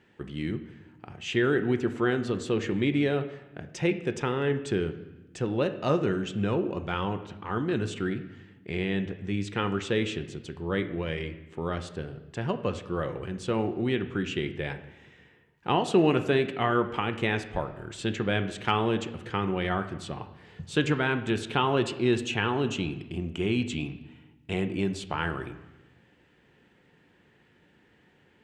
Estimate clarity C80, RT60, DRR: 14.5 dB, 1.1 s, 8.0 dB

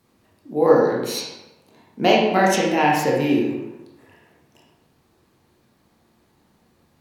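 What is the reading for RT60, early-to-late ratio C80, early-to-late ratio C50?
1.0 s, 5.0 dB, 2.0 dB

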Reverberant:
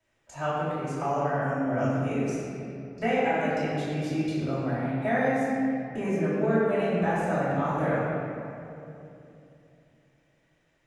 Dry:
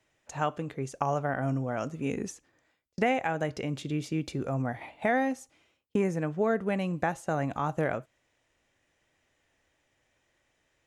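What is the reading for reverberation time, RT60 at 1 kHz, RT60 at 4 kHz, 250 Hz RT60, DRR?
2.9 s, 2.6 s, 1.6 s, 3.7 s, −11.0 dB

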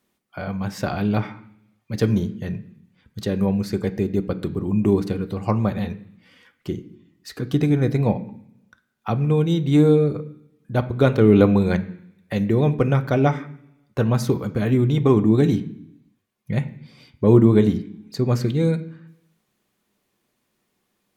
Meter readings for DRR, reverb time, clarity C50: 7.0 dB, 0.70 s, 16.0 dB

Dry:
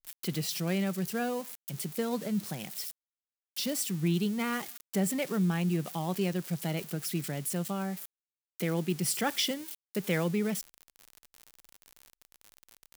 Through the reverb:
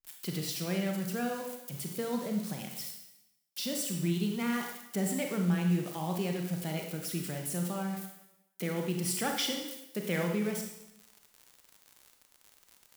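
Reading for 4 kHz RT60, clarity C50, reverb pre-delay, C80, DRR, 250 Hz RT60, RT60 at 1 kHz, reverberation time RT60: 0.85 s, 4.5 dB, 29 ms, 7.0 dB, 2.0 dB, 0.90 s, 0.90 s, 0.90 s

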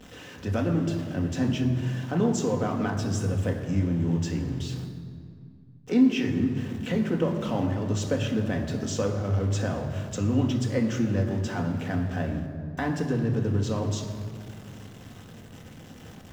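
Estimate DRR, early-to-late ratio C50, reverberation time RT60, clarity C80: 2.0 dB, 7.5 dB, 2.2 s, 8.5 dB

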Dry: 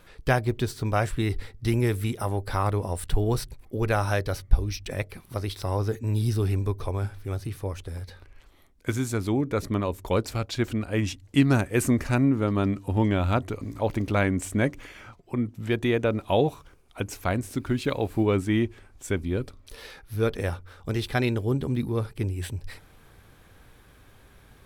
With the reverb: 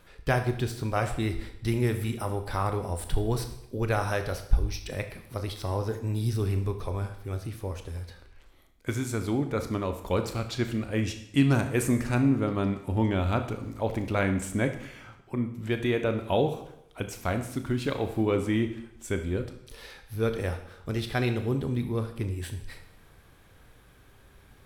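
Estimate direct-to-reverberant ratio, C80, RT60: 6.5 dB, 12.5 dB, 0.80 s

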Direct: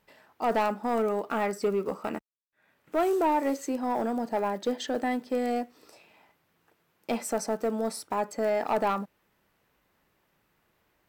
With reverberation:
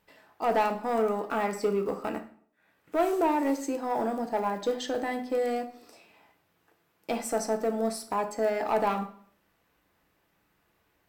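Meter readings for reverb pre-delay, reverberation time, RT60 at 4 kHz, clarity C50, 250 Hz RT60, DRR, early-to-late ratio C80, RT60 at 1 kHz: 3 ms, 0.55 s, 0.45 s, 11.5 dB, 0.55 s, 5.0 dB, 16.0 dB, 0.50 s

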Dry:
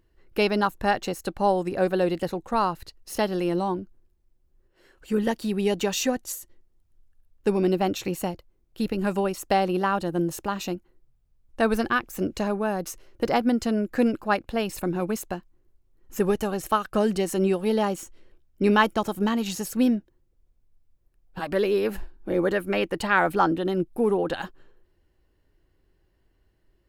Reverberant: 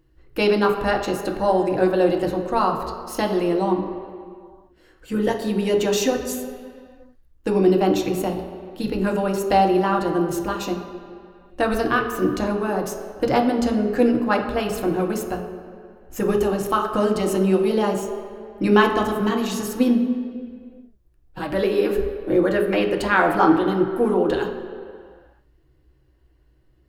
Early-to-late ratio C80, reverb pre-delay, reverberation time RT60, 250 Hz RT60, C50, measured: 8.0 dB, 3 ms, 2.2 s, 2.0 s, 6.5 dB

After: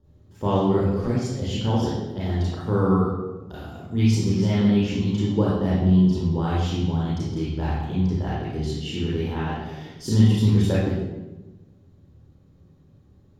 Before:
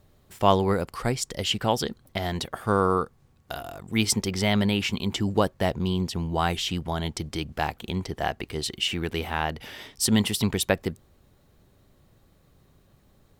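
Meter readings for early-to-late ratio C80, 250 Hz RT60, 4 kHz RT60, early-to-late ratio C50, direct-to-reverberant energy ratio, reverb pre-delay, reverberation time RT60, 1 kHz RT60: 2.0 dB, 1.5 s, 0.80 s, −1.5 dB, −6.0 dB, 25 ms, 1.1 s, 1.0 s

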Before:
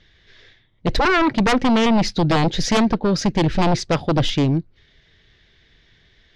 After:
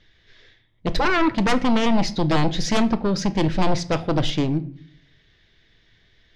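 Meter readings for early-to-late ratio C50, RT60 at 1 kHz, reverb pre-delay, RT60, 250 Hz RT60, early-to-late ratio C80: 18.0 dB, 0.55 s, 3 ms, 0.55 s, 0.80 s, 21.0 dB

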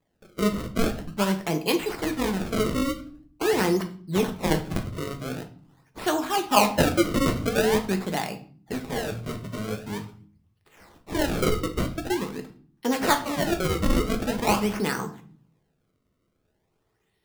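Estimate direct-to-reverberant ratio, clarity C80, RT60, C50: 5.0 dB, 18.0 dB, 0.45 s, 13.0 dB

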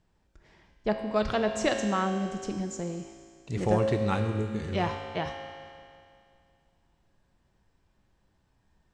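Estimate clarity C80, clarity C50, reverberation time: 6.5 dB, 5.5 dB, 2.3 s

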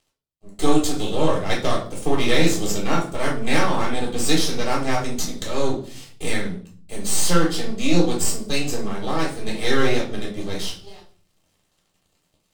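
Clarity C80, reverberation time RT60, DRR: 12.5 dB, 0.45 s, −3.0 dB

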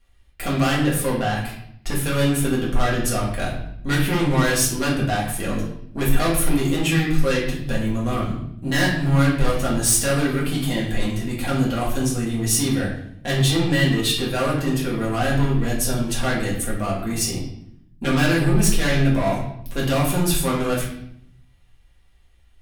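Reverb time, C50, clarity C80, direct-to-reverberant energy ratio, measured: 0.70 s, 4.0 dB, 7.5 dB, −6.0 dB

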